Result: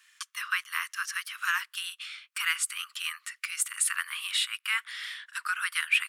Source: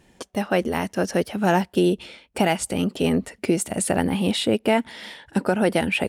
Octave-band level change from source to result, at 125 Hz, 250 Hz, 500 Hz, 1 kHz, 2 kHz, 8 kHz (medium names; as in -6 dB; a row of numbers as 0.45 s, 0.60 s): under -40 dB, under -40 dB, under -40 dB, -11.5 dB, +1.0 dB, -0.5 dB